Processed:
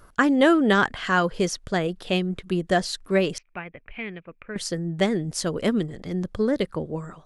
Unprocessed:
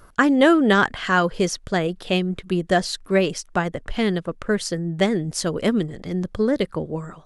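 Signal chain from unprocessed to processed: 3.38–4.56 s: four-pole ladder low-pass 2.5 kHz, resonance 85%; trim -2.5 dB

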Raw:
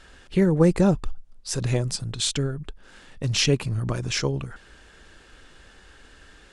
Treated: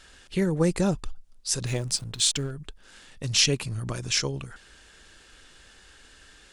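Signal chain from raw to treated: treble shelf 2.5 kHz +10.5 dB; 1.66–2.51 s: hysteresis with a dead band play -36.5 dBFS; trim -5.5 dB

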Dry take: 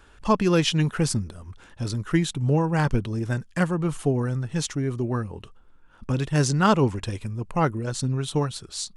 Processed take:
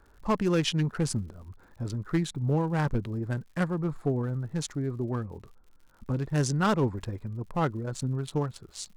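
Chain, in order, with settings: local Wiener filter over 15 samples; overload inside the chain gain 14 dB; crackle 100 per s -45 dBFS; trim -4.5 dB

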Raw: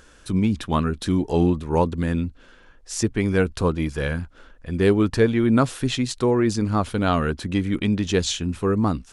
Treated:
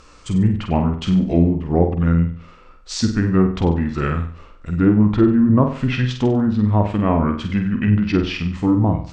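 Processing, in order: low-pass that closes with the level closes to 1.2 kHz, closed at -15 dBFS; formant shift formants -4 st; flutter echo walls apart 8.2 m, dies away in 0.46 s; trim +3.5 dB

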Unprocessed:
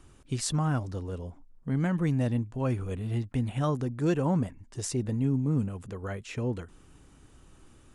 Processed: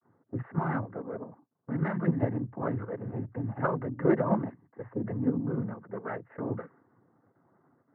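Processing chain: expander -48 dBFS; steep low-pass 1.8 kHz 96 dB/octave; noise-vocoded speech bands 16; bass shelf 230 Hz -11 dB; in parallel at +2.5 dB: level held to a coarse grid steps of 15 dB; on the sum: level-controlled noise filter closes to 1.1 kHz, open at -22.5 dBFS

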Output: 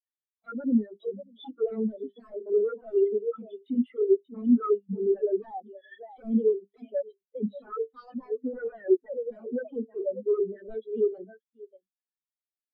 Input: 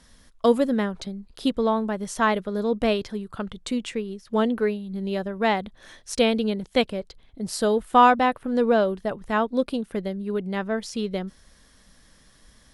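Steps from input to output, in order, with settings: 1.69–4.43 s: companding laws mixed up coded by A; peak limiter -14.5 dBFS, peak gain reduction 10 dB; compression 6:1, threshold -29 dBFS, peak gain reduction 10.5 dB; LPC vocoder at 8 kHz pitch kept; steep high-pass 230 Hz 36 dB/octave; treble shelf 2.3 kHz +11 dB; hum notches 50/100/150/200/250/300/350/400/450 Hz; delay 586 ms -11.5 dB; sine folder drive 16 dB, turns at -18.5 dBFS; spectral contrast expander 4:1; trim +6 dB

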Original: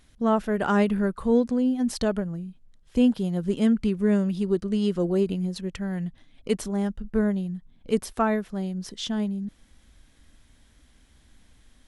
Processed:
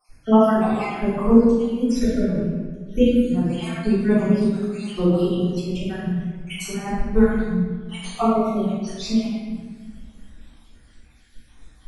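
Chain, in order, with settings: random holes in the spectrogram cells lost 66%; reverberation RT60 1.6 s, pre-delay 3 ms, DRR -15.5 dB; trim -5.5 dB

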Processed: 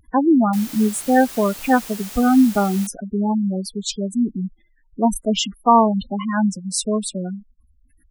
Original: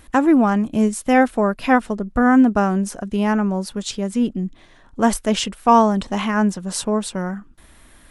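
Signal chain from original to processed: companding laws mixed up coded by A; treble shelf 2.7 kHz +6 dB; spectral gate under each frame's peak -10 dB strong; 0.53–2.87 s: word length cut 6-bit, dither triangular

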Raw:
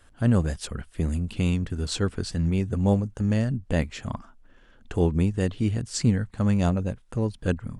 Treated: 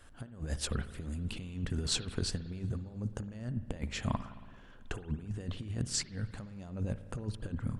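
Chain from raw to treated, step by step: compressor with a negative ratio -29 dBFS, ratio -0.5; spring tank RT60 1.7 s, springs 55 ms, chirp 45 ms, DRR 12 dB; trim -6.5 dB

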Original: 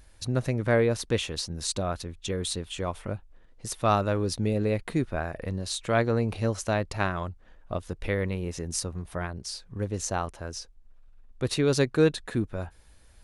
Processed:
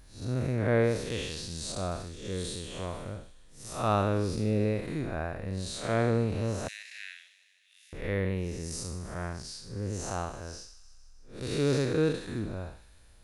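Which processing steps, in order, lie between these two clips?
spectral blur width 176 ms; 6.68–7.93 s: steep high-pass 1.8 kHz 72 dB/octave; feedback echo behind a high-pass 153 ms, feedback 64%, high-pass 2.8 kHz, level -13 dB

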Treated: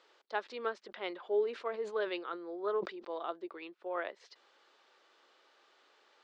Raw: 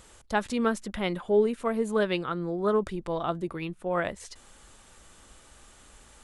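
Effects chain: elliptic band-pass 370–4700 Hz, stop band 50 dB; 0.86–3.24 s: decay stretcher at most 130 dB/s; trim -8 dB

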